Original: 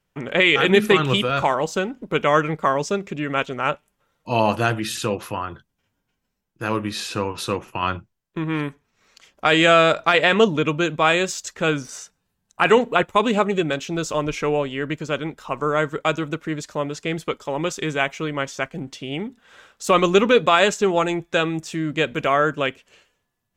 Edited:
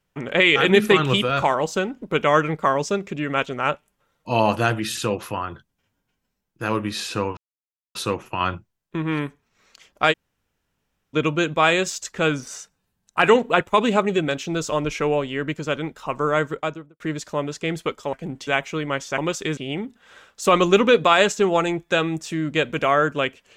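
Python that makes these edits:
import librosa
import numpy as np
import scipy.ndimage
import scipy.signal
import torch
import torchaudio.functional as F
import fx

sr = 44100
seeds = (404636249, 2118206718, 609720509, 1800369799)

y = fx.studio_fade_out(x, sr, start_s=15.84, length_s=0.58)
y = fx.edit(y, sr, fx.insert_silence(at_s=7.37, length_s=0.58),
    fx.room_tone_fill(start_s=9.54, length_s=1.03, crossfade_s=0.04),
    fx.swap(start_s=17.55, length_s=0.39, other_s=18.65, other_length_s=0.34), tone=tone)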